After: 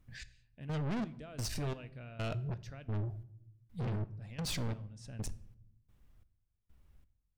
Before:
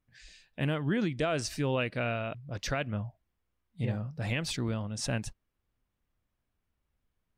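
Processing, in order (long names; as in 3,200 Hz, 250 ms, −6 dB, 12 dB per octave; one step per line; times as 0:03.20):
low-shelf EQ 180 Hz +11.5 dB
in parallel at −1 dB: downward compressor, threshold −42 dBFS, peak gain reduction 20.5 dB
0:01.31–0:01.83: on the sum: transient designer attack −8 dB, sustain −3 dB
gate pattern "xx....xxx...x" 130 BPM −24 dB
soft clipping −35.5 dBFS, distortion −4 dB
on a send at −14.5 dB: convolution reverb RT60 0.75 s, pre-delay 5 ms
on the sum: level +1.5 dB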